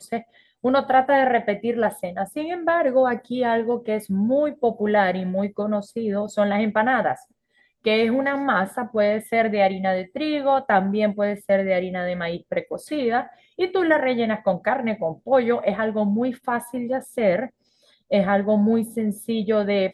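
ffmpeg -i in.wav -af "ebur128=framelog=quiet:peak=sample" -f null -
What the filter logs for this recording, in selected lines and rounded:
Integrated loudness:
  I:         -22.3 LUFS
  Threshold: -32.5 LUFS
Loudness range:
  LRA:         2.0 LU
  Threshold: -42.6 LUFS
  LRA low:   -23.6 LUFS
  LRA high:  -21.5 LUFS
Sample peak:
  Peak:       -5.4 dBFS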